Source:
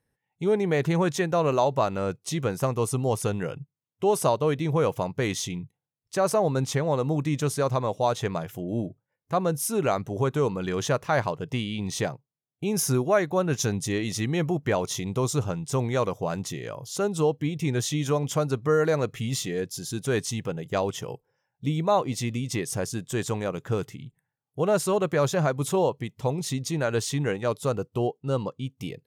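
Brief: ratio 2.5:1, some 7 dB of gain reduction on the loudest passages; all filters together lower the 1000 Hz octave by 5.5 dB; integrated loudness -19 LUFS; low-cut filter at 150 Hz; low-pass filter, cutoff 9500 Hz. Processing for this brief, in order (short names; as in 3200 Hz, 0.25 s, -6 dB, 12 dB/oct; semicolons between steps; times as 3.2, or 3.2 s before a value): HPF 150 Hz; LPF 9500 Hz; bell 1000 Hz -7.5 dB; compressor 2.5:1, threshold -31 dBFS; gain +15 dB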